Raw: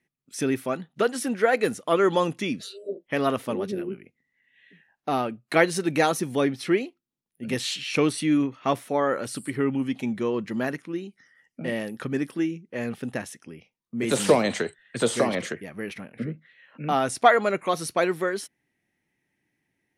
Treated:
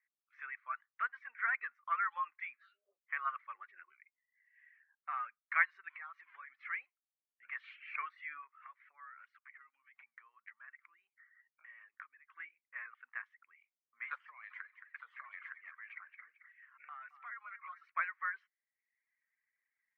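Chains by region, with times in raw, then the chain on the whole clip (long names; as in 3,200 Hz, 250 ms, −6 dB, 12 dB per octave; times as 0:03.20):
0:05.89–0:06.50: spike at every zero crossing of −21 dBFS + band-pass filter 250–5,000 Hz + downward compressor, threshold −31 dBFS
0:08.47–0:12.37: dynamic equaliser 810 Hz, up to −5 dB, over −38 dBFS, Q 0.84 + downward compressor 16 to 1, threshold −36 dBFS
0:14.15–0:17.84: high-shelf EQ 5,500 Hz +10 dB + downward compressor 16 to 1, threshold −31 dBFS + feedback echo with a high-pass in the loop 220 ms, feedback 39%, high-pass 480 Hz, level −9 dB
whole clip: reverb reduction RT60 0.7 s; Chebyshev band-pass filter 1,100–2,200 Hz, order 3; level −4.5 dB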